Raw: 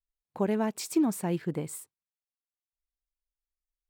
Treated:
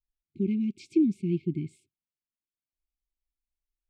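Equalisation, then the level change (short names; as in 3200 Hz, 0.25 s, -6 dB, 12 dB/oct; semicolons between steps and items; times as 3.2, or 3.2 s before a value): brick-wall FIR band-stop 400–2100 Hz; tape spacing loss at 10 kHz 32 dB; +3.5 dB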